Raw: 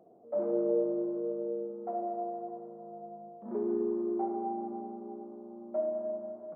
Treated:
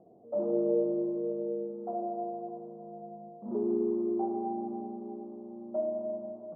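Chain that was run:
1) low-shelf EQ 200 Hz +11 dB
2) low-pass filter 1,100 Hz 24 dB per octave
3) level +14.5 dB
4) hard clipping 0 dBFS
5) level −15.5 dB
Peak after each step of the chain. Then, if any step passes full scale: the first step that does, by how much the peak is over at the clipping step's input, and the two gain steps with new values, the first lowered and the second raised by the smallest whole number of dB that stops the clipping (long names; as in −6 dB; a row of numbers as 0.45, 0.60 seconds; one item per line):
−16.5, −16.5, −2.0, −2.0, −17.5 dBFS
no step passes full scale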